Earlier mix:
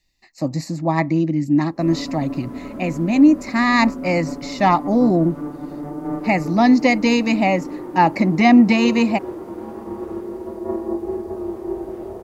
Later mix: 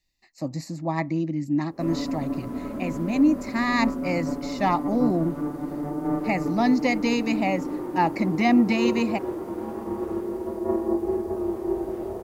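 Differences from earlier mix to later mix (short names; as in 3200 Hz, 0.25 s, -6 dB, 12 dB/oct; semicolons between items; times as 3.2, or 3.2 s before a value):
speech -7.5 dB; master: add high shelf 9300 Hz +4.5 dB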